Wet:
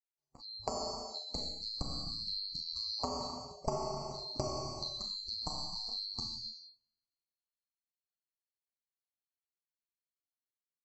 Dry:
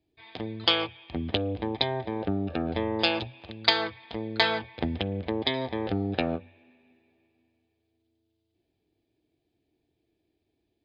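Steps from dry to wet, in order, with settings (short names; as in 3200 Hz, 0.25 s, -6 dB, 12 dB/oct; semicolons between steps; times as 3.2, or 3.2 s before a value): band-swap scrambler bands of 4000 Hz; LPF 1900 Hz 12 dB/oct; bell 73 Hz -4 dB 0.3 oct; Schroeder reverb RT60 1.3 s, combs from 28 ms, DRR -0.5 dB; compressor 3:1, threshold -36 dBFS, peak gain reduction 11.5 dB; spectral noise reduction 26 dB; AGC gain up to 7 dB; 1.18–1.81 three-band expander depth 40%; gain -5 dB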